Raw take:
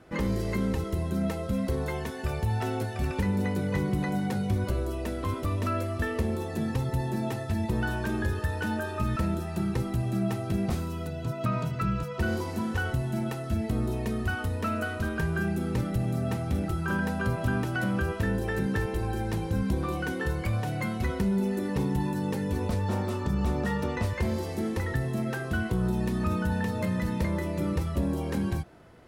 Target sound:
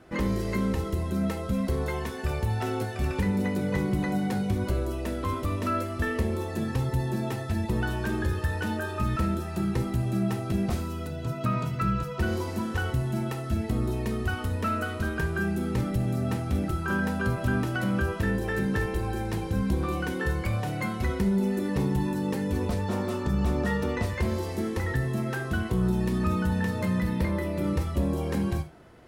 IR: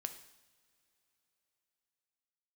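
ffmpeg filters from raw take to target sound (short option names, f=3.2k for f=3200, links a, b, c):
-filter_complex "[0:a]asettb=1/sr,asplit=3[a][b][c];[a]atrim=end=27.004[d];[b]atrim=start=27:end=27.64,asetpts=PTS-STARTPTS,afade=t=in:d=0.004:c=qsin,afade=t=out:st=0.636:d=0.004:c=qsin,equalizer=f=6.8k:t=o:w=0.59:g=-6.5[e];[c]atrim=start=27.636[f];[d][e]acrossfade=d=0.004:c1=hsin:c2=qsin[g];[g][f]acrossfade=d=0.004:c1=qsin:c2=hsin[h];[1:a]atrim=start_sample=2205,atrim=end_sample=3969[i];[h][i]afir=irnorm=-1:irlink=0,volume=3.5dB"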